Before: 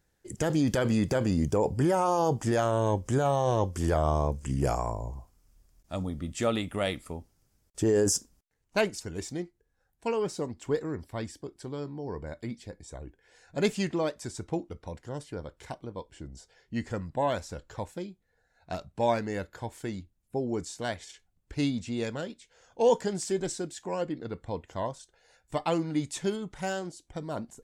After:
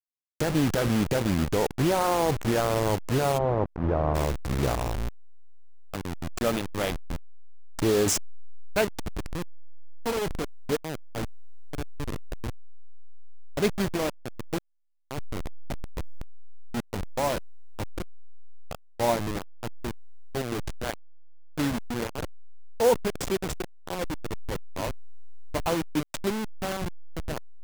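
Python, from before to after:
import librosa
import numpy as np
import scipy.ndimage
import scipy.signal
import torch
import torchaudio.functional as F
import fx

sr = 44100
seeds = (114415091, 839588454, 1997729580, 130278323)

y = fx.delta_hold(x, sr, step_db=-25.5)
y = fx.lowpass(y, sr, hz=1200.0, slope=12, at=(3.37, 4.14), fade=0.02)
y = y * 10.0 ** (2.0 / 20.0)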